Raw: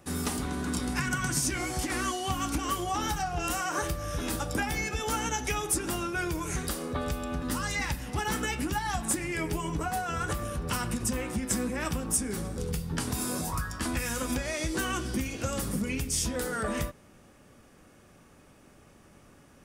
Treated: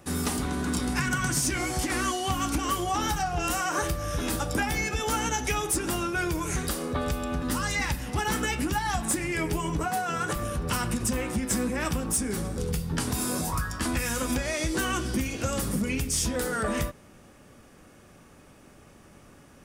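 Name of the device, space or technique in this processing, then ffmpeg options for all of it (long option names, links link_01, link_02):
saturation between pre-emphasis and de-emphasis: -filter_complex "[0:a]highshelf=frequency=8100:gain=8,asoftclip=type=tanh:threshold=-18.5dB,highshelf=frequency=8100:gain=-8,asettb=1/sr,asplit=3[link_01][link_02][link_03];[link_01]atrim=end=9.854[link_04];[link_02]atrim=start=9.85:end=10.36,asetpts=PTS-STARTPTS,afade=type=in:duration=0.004:curve=qsin,afade=type=out:start_time=0.506:duration=0.004:curve=qsin,highpass=frequency=120:width=0.5412,highpass=frequency=120:width=1.3066[link_05];[link_03]atrim=start=10.356[link_06];[link_04][link_05]acrossfade=duration=0.004:curve1=hsin:curve2=qsin[link_07];[link_07][link_06]acrossfade=duration=0.004:curve1=qsin:curve2=hsin,volume=3.5dB"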